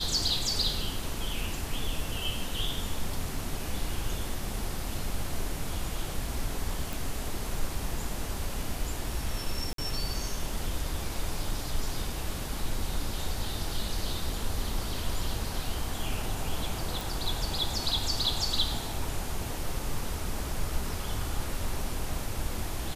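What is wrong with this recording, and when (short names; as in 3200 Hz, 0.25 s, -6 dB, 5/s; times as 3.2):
6.93 pop
9.73–9.78 gap 53 ms
17.01 pop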